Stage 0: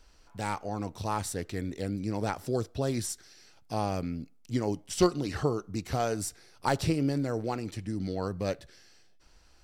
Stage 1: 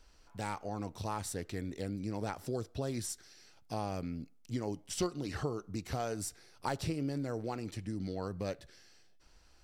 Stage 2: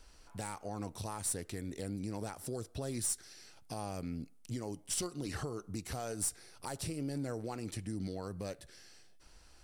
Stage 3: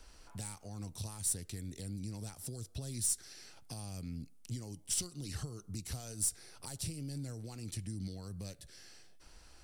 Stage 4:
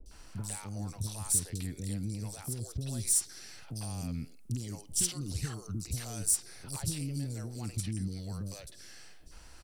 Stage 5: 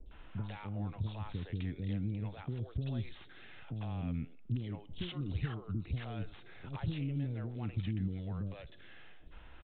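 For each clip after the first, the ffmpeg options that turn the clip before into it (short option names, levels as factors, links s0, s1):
-af "acompressor=threshold=0.0251:ratio=2,volume=0.708"
-filter_complex "[0:a]equalizer=f=9600:t=o:w=0.48:g=9,acrossover=split=6200[s0][s1];[s0]alimiter=level_in=2.82:limit=0.0631:level=0:latency=1:release=356,volume=0.355[s2];[s2][s1]amix=inputs=2:normalize=0,aeval=exprs='(tanh(28.2*val(0)+0.2)-tanh(0.2))/28.2':c=same,volume=1.5"
-filter_complex "[0:a]acrossover=split=190|3000[s0][s1][s2];[s1]acompressor=threshold=0.00126:ratio=3[s3];[s0][s3][s2]amix=inputs=3:normalize=0,volume=1.26"
-filter_complex "[0:a]acrossover=split=470|4200[s0][s1][s2];[s2]adelay=60[s3];[s1]adelay=110[s4];[s0][s4][s3]amix=inputs=3:normalize=0,volume=2"
-af "aresample=8000,aresample=44100"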